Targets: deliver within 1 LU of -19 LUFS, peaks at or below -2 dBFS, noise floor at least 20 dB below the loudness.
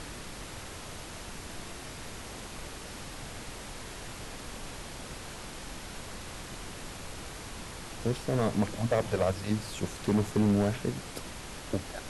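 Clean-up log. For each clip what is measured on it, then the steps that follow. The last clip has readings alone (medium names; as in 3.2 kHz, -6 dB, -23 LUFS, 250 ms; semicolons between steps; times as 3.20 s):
clipped samples 0.8%; clipping level -20.0 dBFS; noise floor -43 dBFS; noise floor target -55 dBFS; loudness -35.0 LUFS; peak level -20.0 dBFS; loudness target -19.0 LUFS
-> clip repair -20 dBFS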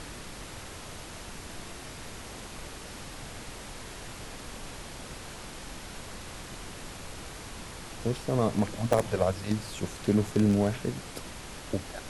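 clipped samples 0.0%; noise floor -43 dBFS; noise floor target -54 dBFS
-> noise print and reduce 11 dB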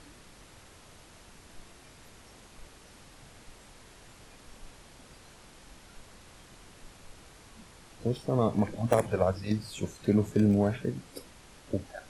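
noise floor -54 dBFS; loudness -29.5 LUFS; peak level -11.0 dBFS; loudness target -19.0 LUFS
-> trim +10.5 dB; peak limiter -2 dBFS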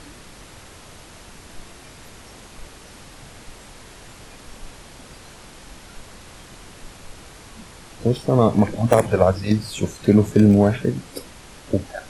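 loudness -19.0 LUFS; peak level -2.0 dBFS; noise floor -44 dBFS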